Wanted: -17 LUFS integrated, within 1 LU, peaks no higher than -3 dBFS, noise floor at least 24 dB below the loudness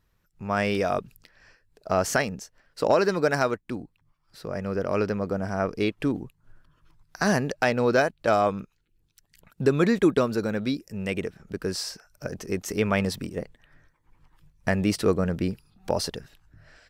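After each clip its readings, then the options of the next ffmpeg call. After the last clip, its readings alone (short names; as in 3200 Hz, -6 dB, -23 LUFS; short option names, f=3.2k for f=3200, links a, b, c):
loudness -26.5 LUFS; peak -9.0 dBFS; loudness target -17.0 LUFS
-> -af "volume=9.5dB,alimiter=limit=-3dB:level=0:latency=1"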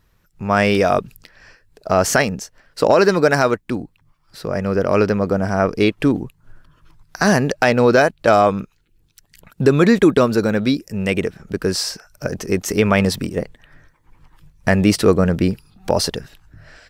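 loudness -17.5 LUFS; peak -3.0 dBFS; noise floor -60 dBFS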